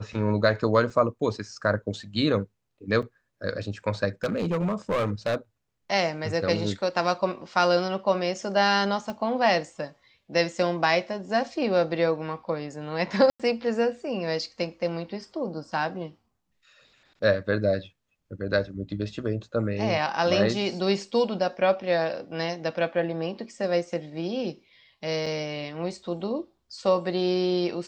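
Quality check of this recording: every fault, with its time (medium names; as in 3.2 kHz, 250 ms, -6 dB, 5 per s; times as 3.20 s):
0.90 s: dropout 3.6 ms
3.02–3.03 s: dropout 5.5 ms
4.24–5.36 s: clipped -21.5 dBFS
9.10 s: pop -20 dBFS
13.30–13.40 s: dropout 96 ms
25.26 s: dropout 4.7 ms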